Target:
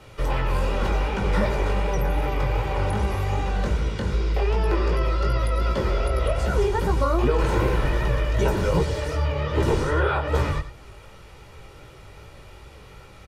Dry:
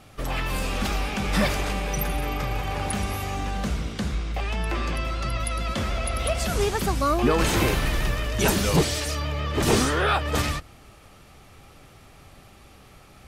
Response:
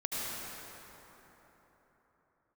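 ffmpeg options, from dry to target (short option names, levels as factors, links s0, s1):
-filter_complex "[0:a]asettb=1/sr,asplit=3[s0][s1][s2];[s0]atrim=end=4.114[s3];[s1]atrim=start=4.11:end=6.21,asetpts=PTS-STARTPTS,afade=t=in:d=0.004:c=qsin,afade=t=out:st=2.096:d=0.004:c=qsin,equalizer=f=400:t=o:w=0.33:g=9,equalizer=f=5000:t=o:w=0.33:g=6,equalizer=f=12500:t=o:w=0.33:g=7[s4];[s2]atrim=start=6.206[s5];[s3][s4]acrossfade=d=0.004:c1=hsin:c2=qsin[s6];[s6][s5]acrossfade=d=0.004:c1=qsin:c2=hsin,flanger=delay=15:depth=7.2:speed=2.6,aecho=1:1:2.1:0.51,aecho=1:1:91:0.178,acrossover=split=110|1600[s7][s8][s9];[s7]acompressor=threshold=0.0398:ratio=4[s10];[s8]acompressor=threshold=0.0447:ratio=4[s11];[s9]acompressor=threshold=0.00562:ratio=4[s12];[s10][s11][s12]amix=inputs=3:normalize=0,highshelf=f=6300:g=-8.5,volume=2.11"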